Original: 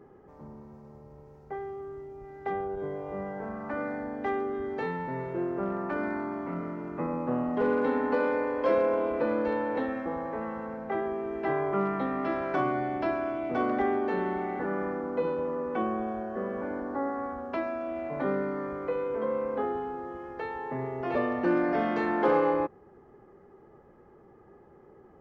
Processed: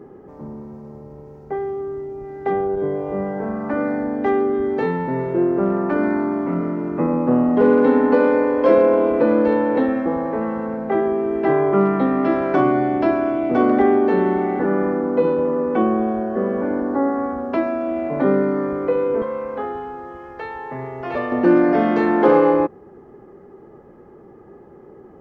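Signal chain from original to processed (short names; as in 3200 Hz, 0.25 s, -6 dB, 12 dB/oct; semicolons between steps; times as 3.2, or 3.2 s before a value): bell 280 Hz +7.5 dB 2.2 oct, from 19.22 s -4.5 dB, from 21.32 s +6 dB; gain +6.5 dB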